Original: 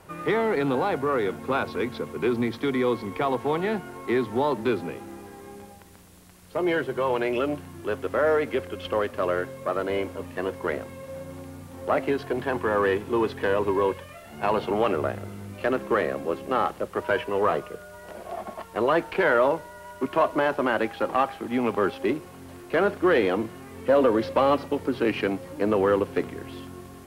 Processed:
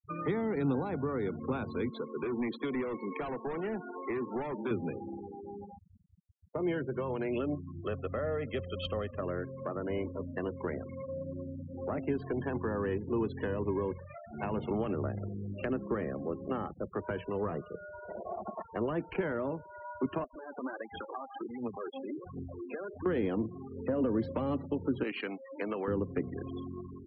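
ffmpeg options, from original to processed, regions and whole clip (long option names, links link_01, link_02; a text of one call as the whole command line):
ffmpeg -i in.wav -filter_complex "[0:a]asettb=1/sr,asplit=3[link_01][link_02][link_03];[link_01]atrim=end=1.904[link_04];[link_02]atrim=start=1.9:end=4.71,asetpts=PTS-STARTPTS,afade=type=in:duration=0.004:curve=qsin,afade=type=out:start_time=2.806:duration=0.004:curve=qsin,highpass=250,lowpass=7000,volume=26.5dB,asoftclip=hard,volume=-26.5dB[link_05];[link_03]atrim=start=4.706[link_06];[link_04][link_05]acrossfade=duration=0.004:curve1=hsin:curve2=qsin[link_07];[link_07][link_06]acrossfade=duration=0.004:curve1=qsin:curve2=hsin,asettb=1/sr,asplit=3[link_08][link_09][link_10];[link_08]atrim=end=7.744[link_11];[link_09]atrim=start=7.74:end=9.21,asetpts=PTS-STARTPTS,afade=type=in:duration=0.004:curve=qsin,afade=type=out:start_time=1.466:duration=0.004:curve=qsin,highshelf=frequency=4100:gain=10.5,aecho=1:1:1.6:0.48,atrim=end_sample=64827[link_12];[link_10]atrim=start=9.206[link_13];[link_11][link_12]acrossfade=duration=0.004:curve1=hsin:curve2=qsin[link_14];[link_14][link_13]acrossfade=duration=0.004:curve1=qsin:curve2=hsin,asettb=1/sr,asplit=3[link_15][link_16][link_17];[link_15]atrim=end=20.244[link_18];[link_16]atrim=start=20.24:end=23.06,asetpts=PTS-STARTPTS,afade=type=in:duration=0.004:curve=qsin,afade=type=out:start_time=2.816:duration=0.004:curve=qsin,acompressor=threshold=-37dB:ratio=5:attack=3.2:release=140:knee=1:detection=peak,aphaser=in_gain=1:out_gain=1:delay=4.4:decay=0.54:speed=1.4:type=triangular[link_19];[link_17]atrim=start=23.056[link_20];[link_18][link_19]acrossfade=duration=0.004:curve1=hsin:curve2=qsin[link_21];[link_21][link_20]acrossfade=duration=0.004:curve1=qsin:curve2=hsin,asettb=1/sr,asplit=3[link_22][link_23][link_24];[link_22]atrim=end=25.034[link_25];[link_23]atrim=start=25.03:end=25.88,asetpts=PTS-STARTPTS,afade=type=in:duration=0.004:curve=qsin,afade=type=out:start_time=0.846:duration=0.004:curve=qsin,highpass=frequency=1300:poles=1,equalizer=frequency=7300:width_type=o:width=0.25:gain=-14,acontrast=26[link_26];[link_24]atrim=start=25.876[link_27];[link_25][link_26]acrossfade=duration=0.004:curve1=hsin:curve2=qsin[link_28];[link_28][link_27]acrossfade=duration=0.004:curve1=qsin:curve2=hsin,afftfilt=real='re*gte(hypot(re,im),0.0224)':imag='im*gte(hypot(re,im),0.0224)':win_size=1024:overlap=0.75,acrossover=split=280[link_29][link_30];[link_30]acompressor=threshold=-36dB:ratio=10[link_31];[link_29][link_31]amix=inputs=2:normalize=0" out.wav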